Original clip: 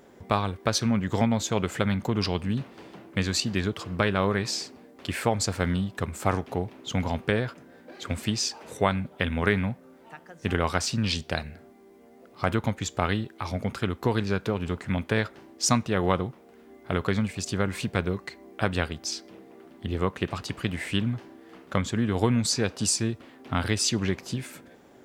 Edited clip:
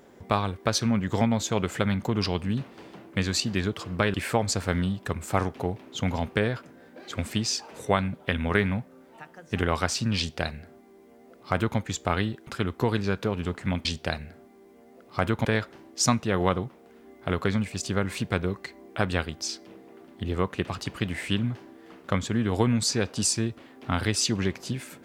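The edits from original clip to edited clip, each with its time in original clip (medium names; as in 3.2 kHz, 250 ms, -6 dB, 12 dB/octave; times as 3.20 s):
4.14–5.06 s: delete
11.10–12.70 s: copy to 15.08 s
13.39–13.70 s: delete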